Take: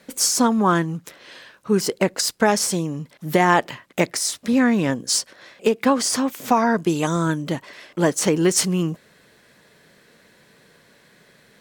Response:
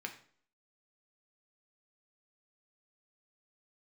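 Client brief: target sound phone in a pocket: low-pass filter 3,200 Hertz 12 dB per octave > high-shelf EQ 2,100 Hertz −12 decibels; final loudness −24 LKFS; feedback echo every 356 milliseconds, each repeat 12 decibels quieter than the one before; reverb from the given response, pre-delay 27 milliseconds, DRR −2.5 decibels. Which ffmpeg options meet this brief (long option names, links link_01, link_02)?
-filter_complex "[0:a]aecho=1:1:356|712|1068:0.251|0.0628|0.0157,asplit=2[link_01][link_02];[1:a]atrim=start_sample=2205,adelay=27[link_03];[link_02][link_03]afir=irnorm=-1:irlink=0,volume=2.5dB[link_04];[link_01][link_04]amix=inputs=2:normalize=0,lowpass=3200,highshelf=frequency=2100:gain=-12,volume=-5.5dB"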